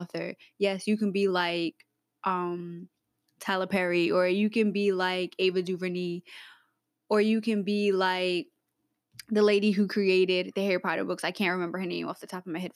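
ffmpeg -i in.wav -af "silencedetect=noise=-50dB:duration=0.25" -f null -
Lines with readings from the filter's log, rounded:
silence_start: 1.81
silence_end: 2.24 | silence_duration: 0.43
silence_start: 2.86
silence_end: 3.29 | silence_duration: 0.43
silence_start: 6.56
silence_end: 7.10 | silence_duration: 0.55
silence_start: 8.44
silence_end: 9.16 | silence_duration: 0.72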